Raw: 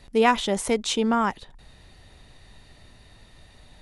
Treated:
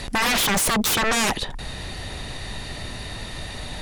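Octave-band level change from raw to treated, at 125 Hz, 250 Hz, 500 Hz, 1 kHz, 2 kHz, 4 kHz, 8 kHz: +8.5, -1.5, -5.0, -0.5, +7.5, +7.5, +10.5 dB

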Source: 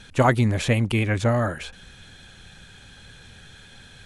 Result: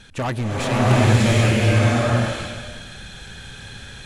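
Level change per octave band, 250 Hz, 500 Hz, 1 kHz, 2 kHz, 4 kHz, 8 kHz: +4.5, +3.5, +3.0, +4.5, +7.5, +8.0 dB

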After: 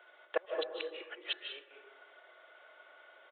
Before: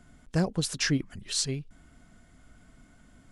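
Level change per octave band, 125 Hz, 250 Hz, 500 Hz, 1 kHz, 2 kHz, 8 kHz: under -40 dB, -24.0 dB, -1.0 dB, -3.0 dB, -6.5 dB, under -40 dB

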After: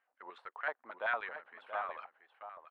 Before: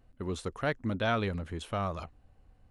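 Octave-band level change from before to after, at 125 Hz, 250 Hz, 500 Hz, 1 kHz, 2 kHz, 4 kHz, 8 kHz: under -40 dB, -29.0 dB, -9.5 dB, -3.5 dB, 0.0 dB, -14.0 dB, under -30 dB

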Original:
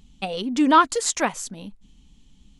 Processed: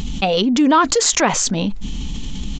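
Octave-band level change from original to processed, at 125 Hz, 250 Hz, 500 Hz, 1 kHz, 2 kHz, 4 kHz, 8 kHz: +16.5, +6.5, +8.0, +2.0, +5.0, +10.0, +9.5 dB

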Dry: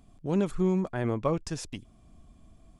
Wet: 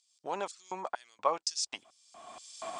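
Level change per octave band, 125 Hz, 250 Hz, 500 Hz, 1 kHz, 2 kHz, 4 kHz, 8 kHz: under -25 dB, -22.5 dB, -7.5 dB, +4.0 dB, -2.0 dB, +8.0 dB, +7.0 dB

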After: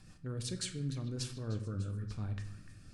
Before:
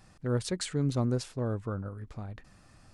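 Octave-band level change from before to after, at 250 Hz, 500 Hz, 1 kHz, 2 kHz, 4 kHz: -8.5, -12.5, -12.0, -6.5, -2.5 dB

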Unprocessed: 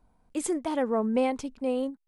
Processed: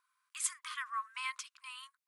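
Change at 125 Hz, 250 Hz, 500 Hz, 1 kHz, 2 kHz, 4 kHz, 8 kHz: n/a, under -40 dB, under -40 dB, -7.5 dB, +1.0 dB, +1.0 dB, +1.0 dB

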